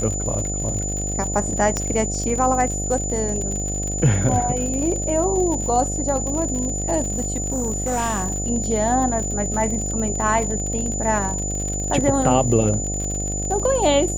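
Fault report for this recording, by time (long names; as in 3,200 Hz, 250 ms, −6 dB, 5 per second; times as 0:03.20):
mains buzz 50 Hz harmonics 15 −27 dBFS
surface crackle 54 per second −26 dBFS
whistle 7,000 Hz −26 dBFS
0:01.77: click −9 dBFS
0:07.12–0:08.44: clipping −18 dBFS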